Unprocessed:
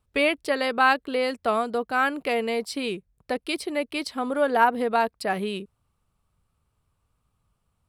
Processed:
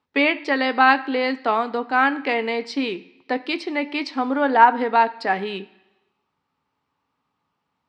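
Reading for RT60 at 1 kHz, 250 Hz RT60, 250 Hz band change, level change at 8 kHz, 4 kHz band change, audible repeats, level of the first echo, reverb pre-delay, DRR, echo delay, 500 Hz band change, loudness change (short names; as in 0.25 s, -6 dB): 1.0 s, 0.95 s, +5.0 dB, n/a, +2.5 dB, none, none, 9 ms, 10.0 dB, none, +1.0 dB, +4.5 dB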